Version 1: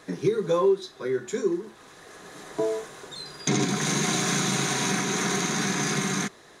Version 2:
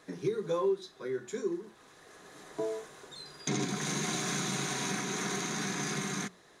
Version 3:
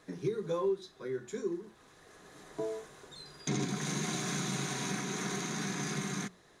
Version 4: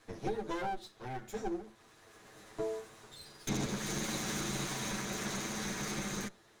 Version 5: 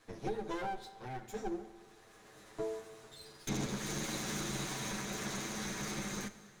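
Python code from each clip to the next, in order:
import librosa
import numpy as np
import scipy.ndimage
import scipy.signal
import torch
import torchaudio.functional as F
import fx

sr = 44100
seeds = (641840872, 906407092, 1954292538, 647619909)

y1 = fx.hum_notches(x, sr, base_hz=60, count=3)
y1 = y1 * librosa.db_to_amplitude(-8.0)
y2 = fx.low_shelf(y1, sr, hz=140.0, db=9.0)
y2 = y2 * librosa.db_to_amplitude(-3.0)
y3 = fx.lower_of_two(y2, sr, delay_ms=9.0)
y4 = fx.rev_plate(y3, sr, seeds[0], rt60_s=2.3, hf_ratio=0.9, predelay_ms=0, drr_db=13.5)
y4 = y4 * librosa.db_to_amplitude(-2.0)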